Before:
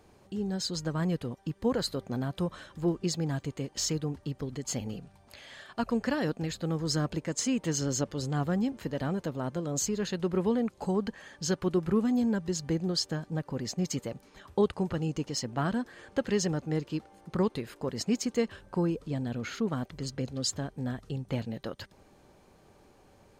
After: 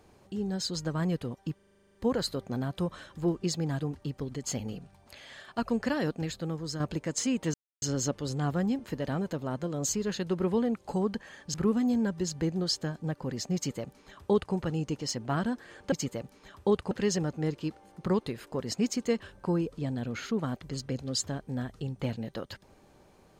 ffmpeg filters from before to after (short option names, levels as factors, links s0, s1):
-filter_complex "[0:a]asplit=17[s0][s1][s2][s3][s4][s5][s6][s7][s8][s9][s10][s11][s12][s13][s14][s15][s16];[s0]atrim=end=1.592[s17];[s1]atrim=start=1.548:end=1.592[s18];[s2]atrim=start=1.548:end=1.592[s19];[s3]atrim=start=1.548:end=1.592[s20];[s4]atrim=start=1.548:end=1.592[s21];[s5]atrim=start=1.548:end=1.592[s22];[s6]atrim=start=1.548:end=1.592[s23];[s7]atrim=start=1.548:end=1.592[s24];[s8]atrim=start=1.548:end=1.592[s25];[s9]atrim=start=1.548:end=1.592[s26];[s10]atrim=start=1.548:end=3.402[s27];[s11]atrim=start=4.008:end=7.01,asetpts=PTS-STARTPTS,afade=t=out:st=2.442:d=0.56:silence=0.375837[s28];[s12]atrim=start=7.01:end=7.75,asetpts=PTS-STARTPTS,afade=t=in:d=0.004:c=hsin:silence=0.375837,afade=t=out:st=0.736:d=0.004:c=hsin,apad=pad_dur=0.28[s29];[s13]atrim=start=7.75:end=11.472,asetpts=PTS-STARTPTS,afade=t=in:d=0.004:c=hsin[s30];[s14]atrim=start=11.818:end=16.202[s31];[s15]atrim=start=13.828:end=14.822[s32];[s16]atrim=start=16.198[s33];[s17][s18]acrossfade=d=0.004:c1=hsin:c2=hsin[s34];[s34][s19]acrossfade=d=0.004:c1=hsin:c2=hsin[s35];[s35][s20]acrossfade=d=0.004:c1=hsin:c2=hsin[s36];[s36][s21]acrossfade=d=0.004:c1=hsin:c2=hsin[s37];[s37][s22]acrossfade=d=0.004:c1=hsin:c2=hsin[s38];[s38][s23]acrossfade=d=0.004:c1=hsin:c2=hsin[s39];[s39][s24]acrossfade=d=0.004:c1=hsin:c2=hsin[s40];[s40][s25]acrossfade=d=0.004:c1=hsin:c2=hsin[s41];[s41][s26]acrossfade=d=0.004:c1=hsin:c2=hsin[s42];[s42][s27]acrossfade=d=0.004:c1=hsin:c2=hsin[s43];[s28][s29][s30]concat=n=3:v=0:a=1[s44];[s43][s44]acrossfade=d=0.004:c1=hsin:c2=hsin[s45];[s45][s31]acrossfade=d=0.004:c1=hsin:c2=hsin[s46];[s46][s32]acrossfade=d=0.004:c1=hsin:c2=hsin[s47];[s47][s33]acrossfade=d=0.004:c1=hsin:c2=hsin"